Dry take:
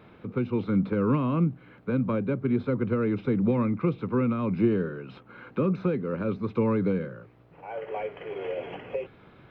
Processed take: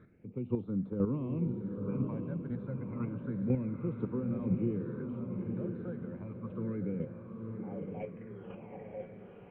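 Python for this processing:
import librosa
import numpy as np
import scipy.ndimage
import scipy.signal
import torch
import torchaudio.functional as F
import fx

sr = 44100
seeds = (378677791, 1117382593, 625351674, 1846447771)

p1 = fx.phaser_stages(x, sr, stages=8, low_hz=320.0, high_hz=2000.0, hz=0.3, feedback_pct=25)
p2 = fx.high_shelf(p1, sr, hz=3600.0, db=-10.5)
p3 = fx.chopper(p2, sr, hz=2.0, depth_pct=60, duty_pct=10)
p4 = fx.air_absorb(p3, sr, metres=400.0)
p5 = p4 + fx.echo_diffused(p4, sr, ms=921, feedback_pct=44, wet_db=-4, dry=0)
y = F.gain(torch.from_numpy(p5), -2.0).numpy()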